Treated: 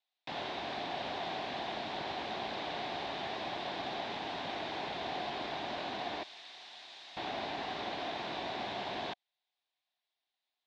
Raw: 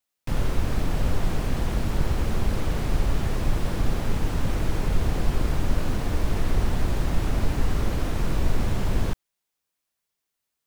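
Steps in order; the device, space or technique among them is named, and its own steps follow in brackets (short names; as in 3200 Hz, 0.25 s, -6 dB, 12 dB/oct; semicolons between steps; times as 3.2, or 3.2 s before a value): 6.23–7.17 pre-emphasis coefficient 0.97; phone earpiece (speaker cabinet 480–4400 Hz, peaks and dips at 490 Hz -8 dB, 730 Hz +8 dB, 1300 Hz -8 dB, 3700 Hz +8 dB); gain -2.5 dB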